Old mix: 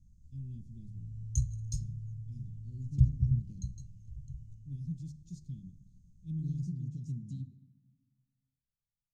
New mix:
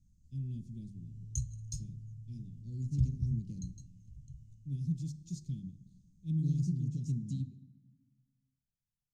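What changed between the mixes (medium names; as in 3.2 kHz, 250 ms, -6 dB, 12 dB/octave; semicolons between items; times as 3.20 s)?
speech +8.5 dB; master: add bass shelf 160 Hz -8 dB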